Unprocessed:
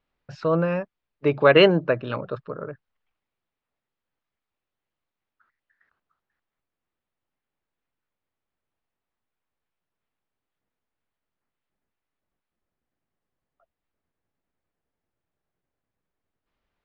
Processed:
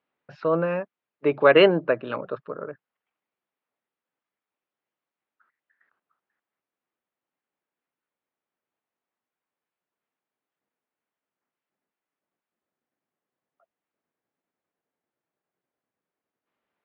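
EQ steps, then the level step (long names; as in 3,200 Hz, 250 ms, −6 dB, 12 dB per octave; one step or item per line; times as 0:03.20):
band-pass filter 220–3,000 Hz
0.0 dB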